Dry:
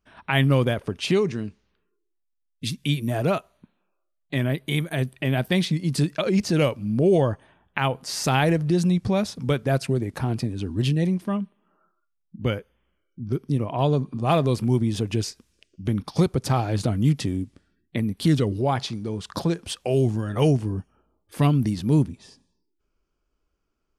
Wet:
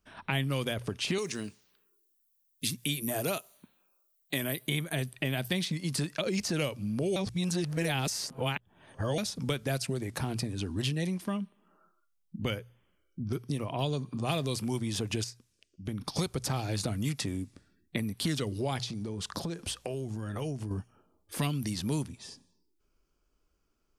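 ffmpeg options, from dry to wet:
-filter_complex "[0:a]asettb=1/sr,asplit=3[s0][s1][s2];[s0]atrim=end=1.184[s3];[s1]atrim=start=1.18:end=4.67,asetpts=PTS-STARTPTS,afade=t=in:d=0.004:c=qsin,afade=t=out:st=3.486:d=0.004:c=qsin,aemphasis=mode=production:type=bsi[s4];[s2]atrim=start=4.666[s5];[s3][s4]acrossfade=d=0.004:c1=hsin:c2=qsin[s6];[s6][s5]acrossfade=d=0.004:c1=qsin:c2=hsin,asettb=1/sr,asplit=3[s7][s8][s9];[s7]atrim=end=16.624[s10];[s8]atrim=start=16.62:end=18.13,asetpts=PTS-STARTPTS,afade=t=in:d=0.004:c=qsin,afade=t=out:st=1.506:d=0.004:c=qsin,bandreject=f=3100:w=12[s11];[s9]atrim=start=18.126[s12];[s10][s11]acrossfade=d=0.004:c1=hsin:c2=qsin[s13];[s13][s12]acrossfade=d=0.004:c1=qsin:c2=hsin,asettb=1/sr,asplit=3[s14][s15][s16];[s14]atrim=end=18.834[s17];[s15]atrim=start=18.83:end=20.71,asetpts=PTS-STARTPTS,afade=t=in:d=0.004:c=qsin,afade=t=out:st=1.876:d=0.004:c=qsin,acompressor=threshold=0.0282:ratio=6:attack=3.2:release=140:knee=1:detection=peak[s18];[s16]atrim=start=20.706[s19];[s17][s18]acrossfade=d=0.004:c1=hsin:c2=qsin[s20];[s20][s19]acrossfade=d=0.004:c1=qsin:c2=hsin,asplit=5[s21][s22][s23][s24][s25];[s21]atrim=end=7.162[s26];[s22]atrim=start=7.158:end=9.182,asetpts=PTS-STARTPTS,areverse[s27];[s23]atrim=start=9.178:end=15.242[s28];[s24]atrim=start=15.238:end=16.012,asetpts=PTS-STARTPTS,volume=0.376[s29];[s25]atrim=start=16.008[s30];[s26][s27]acrossfade=d=0.004:c1=hsin:c2=hsin[s31];[s31][s28]acrossfade=d=0.004:c1=hsin:c2=hsin[s32];[s32][s29]acrossfade=d=0.004:c1=hsin:c2=hsin[s33];[s33][s30]acrossfade=d=0.004:c1=hsin:c2=hsin,bass=f=250:g=1,treble=f=4000:g=5,bandreject=f=60:t=h:w=6,bandreject=f=120:t=h:w=6,acrossover=split=620|2100[s34][s35][s36];[s34]acompressor=threshold=0.0251:ratio=4[s37];[s35]acompressor=threshold=0.00891:ratio=4[s38];[s36]acompressor=threshold=0.02:ratio=4[s39];[s37][s38][s39]amix=inputs=3:normalize=0"

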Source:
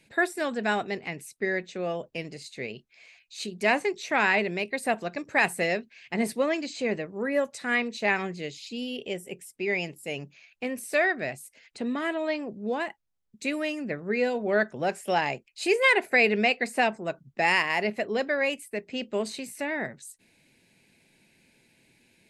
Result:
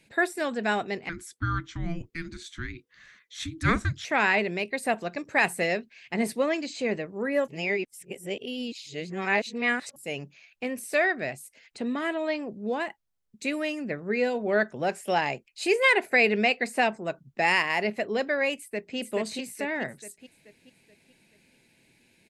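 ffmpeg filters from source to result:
-filter_complex "[0:a]asettb=1/sr,asplit=3[s0][s1][s2];[s0]atrim=end=1.094[s3];[s1]atrim=start=1.09:end=4.05,asetpts=PTS-STARTPTS,afade=t=in:d=0.004:c=qsin,afade=t=out:st=2.956:d=0.004:c=qsin,afreqshift=-500[s4];[s2]atrim=start=4.046[s5];[s3][s4]acrossfade=d=0.004:c1=hsin:c2=qsin[s6];[s6][s5]acrossfade=d=0.004:c1=qsin:c2=hsin,asplit=2[s7][s8];[s8]afade=t=in:st=18.55:d=0.01,afade=t=out:st=18.97:d=0.01,aecho=0:1:430|860|1290|1720|2150|2580:0.891251|0.401063|0.180478|0.0812152|0.0365469|0.0164461[s9];[s7][s9]amix=inputs=2:normalize=0,asplit=3[s10][s11][s12];[s10]atrim=end=7.482[s13];[s11]atrim=start=7.478:end=9.962,asetpts=PTS-STARTPTS,areverse[s14];[s12]atrim=start=9.958[s15];[s13][s14]acrossfade=d=0.004:c1=hsin:c2=hsin[s16];[s16][s15]acrossfade=d=0.004:c1=hsin:c2=hsin"

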